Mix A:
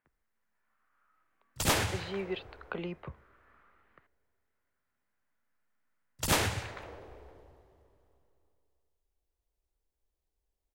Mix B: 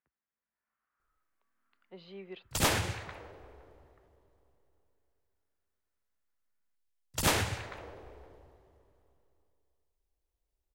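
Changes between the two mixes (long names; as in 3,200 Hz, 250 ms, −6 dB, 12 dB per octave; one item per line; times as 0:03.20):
speech −10.0 dB
background: entry +0.95 s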